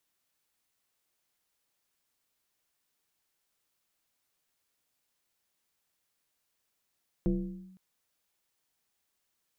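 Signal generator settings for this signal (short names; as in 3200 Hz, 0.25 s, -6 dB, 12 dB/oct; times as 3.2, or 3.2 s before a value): FM tone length 0.51 s, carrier 187 Hz, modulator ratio 0.83, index 1.2, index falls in 0.48 s linear, decay 0.95 s, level -22 dB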